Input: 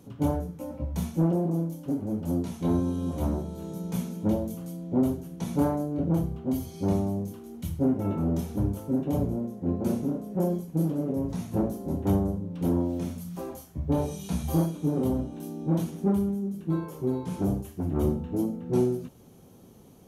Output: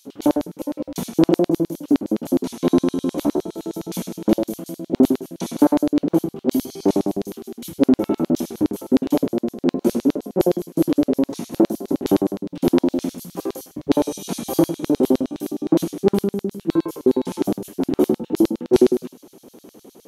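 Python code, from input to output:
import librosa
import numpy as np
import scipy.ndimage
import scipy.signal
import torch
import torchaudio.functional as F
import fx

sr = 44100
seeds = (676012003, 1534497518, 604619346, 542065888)

y = x + 10.0 ** (-16.0 / 20.0) * np.pad(x, (int(85 * sr / 1000.0), 0))[:len(x)]
y = fx.filter_lfo_highpass(y, sr, shape='square', hz=9.7, low_hz=310.0, high_hz=4100.0, q=2.1)
y = y * 10.0 ** (8.5 / 20.0)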